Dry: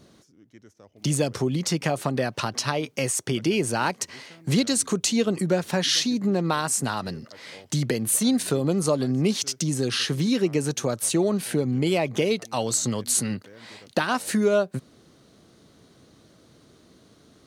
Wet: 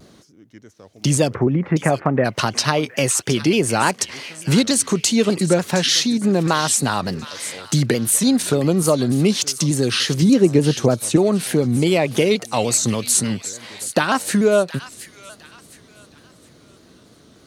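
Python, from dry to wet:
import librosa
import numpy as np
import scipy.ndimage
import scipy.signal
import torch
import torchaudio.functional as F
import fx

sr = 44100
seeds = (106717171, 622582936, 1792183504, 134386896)

p1 = fx.steep_lowpass(x, sr, hz=2200.0, slope=36, at=(1.33, 2.24), fade=0.02)
p2 = fx.tilt_shelf(p1, sr, db=5.5, hz=1100.0, at=(10.22, 11.16))
p3 = fx.rider(p2, sr, range_db=4, speed_s=0.5)
p4 = p2 + (p3 * librosa.db_to_amplitude(-2.0))
p5 = fx.echo_wet_highpass(p4, sr, ms=717, feedback_pct=35, hz=1700.0, wet_db=-11)
p6 = fx.vibrato_shape(p5, sr, shape='saw_down', rate_hz=3.4, depth_cents=100.0)
y = p6 * librosa.db_to_amplitude(1.0)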